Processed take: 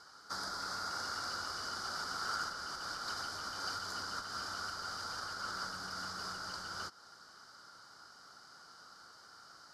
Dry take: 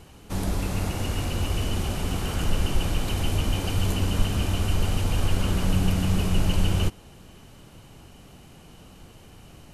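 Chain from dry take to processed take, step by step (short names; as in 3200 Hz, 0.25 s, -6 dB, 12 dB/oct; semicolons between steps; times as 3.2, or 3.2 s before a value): compressor 3:1, threshold -25 dBFS, peak gain reduction 9 dB; double band-pass 2600 Hz, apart 1.8 oct; gain +9.5 dB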